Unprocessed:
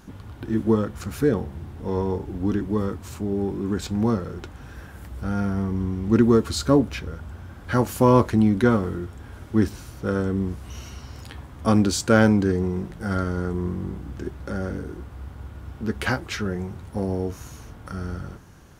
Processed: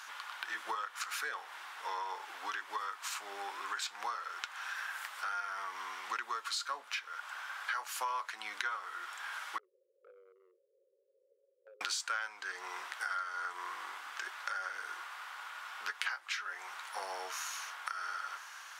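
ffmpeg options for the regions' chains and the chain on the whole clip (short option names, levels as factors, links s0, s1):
-filter_complex "[0:a]asettb=1/sr,asplit=3[s0][s1][s2];[s0]atrim=end=9.584[s3];[s1]atrim=start=9.58:end=11.81,asetpts=PTS-STARTPTS,afade=t=in:d=0.004:c=qsin,afade=t=out:st=2.226:d=0.004:c=qsin,asuperpass=centerf=450:order=20:qfactor=2.2,acompressor=threshold=0.00891:ratio=4:attack=3.2:release=140:knee=1:detection=peak[s4];[s2]atrim=start=11.806[s5];[s3][s4]acrossfade=d=0.004:c1=hsin:c2=qsin[s6];[s6][s5]acrossfade=d=0.004:c1=qsin:c2=hsin,highpass=f=1100:w=0.5412,highpass=f=1100:w=1.3066,highshelf=f=8100:g=-11.5,acompressor=threshold=0.00447:ratio=6,volume=3.55"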